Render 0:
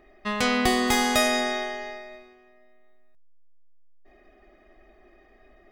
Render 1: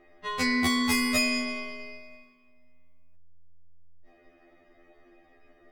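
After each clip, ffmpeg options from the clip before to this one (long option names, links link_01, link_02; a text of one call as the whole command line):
ffmpeg -i in.wav -af "afftfilt=real='re*2*eq(mod(b,4),0)':imag='im*2*eq(mod(b,4),0)':win_size=2048:overlap=0.75" out.wav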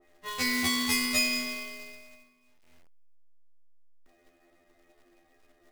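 ffmpeg -i in.wav -filter_complex "[0:a]acrossover=split=3400[link_01][link_02];[link_01]acrusher=bits=2:mode=log:mix=0:aa=0.000001[link_03];[link_03][link_02]amix=inputs=2:normalize=0,adynamicequalizer=threshold=0.00891:dfrequency=2000:dqfactor=0.7:tfrequency=2000:tqfactor=0.7:attack=5:release=100:ratio=0.375:range=3.5:mode=boostabove:tftype=highshelf,volume=-6dB" out.wav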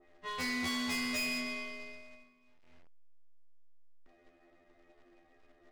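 ffmpeg -i in.wav -af "adynamicsmooth=sensitivity=2:basefreq=4500,asoftclip=type=tanh:threshold=-31.5dB" out.wav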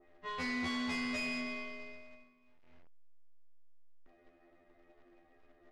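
ffmpeg -i in.wav -af "lowpass=8200,highshelf=frequency=4200:gain=-10.5" out.wav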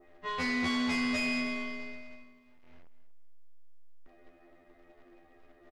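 ffmpeg -i in.wav -af "aecho=1:1:242|484:0.188|0.0396,volume=5.5dB" out.wav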